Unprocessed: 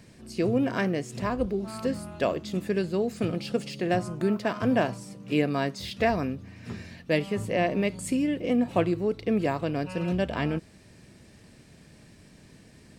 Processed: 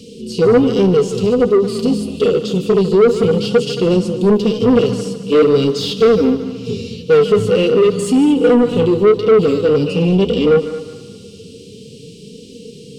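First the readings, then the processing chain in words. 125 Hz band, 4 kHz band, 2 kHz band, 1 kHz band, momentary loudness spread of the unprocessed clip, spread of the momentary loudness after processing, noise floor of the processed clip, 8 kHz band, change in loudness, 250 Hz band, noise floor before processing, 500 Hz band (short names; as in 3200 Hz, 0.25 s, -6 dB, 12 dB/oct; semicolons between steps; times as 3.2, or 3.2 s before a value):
+11.5 dB, +14.5 dB, +5.5 dB, +7.5 dB, 6 LU, 7 LU, -37 dBFS, +10.5 dB, +14.0 dB, +12.5 dB, -54 dBFS, +17.0 dB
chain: flange 0.48 Hz, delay 3.2 ms, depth 8.8 ms, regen -25%; Chebyshev band-stop 440–2900 Hz, order 4; bell 330 Hz -9.5 dB 0.24 oct; in parallel at +1.5 dB: limiter -29.5 dBFS, peak gain reduction 9.5 dB; on the sum: harmonic-percussive split harmonic +9 dB; small resonant body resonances 480/1200 Hz, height 15 dB, ringing for 60 ms; overdrive pedal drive 22 dB, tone 2100 Hz, clips at -2.5 dBFS; on a send: multi-head echo 74 ms, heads second and third, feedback 40%, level -15 dB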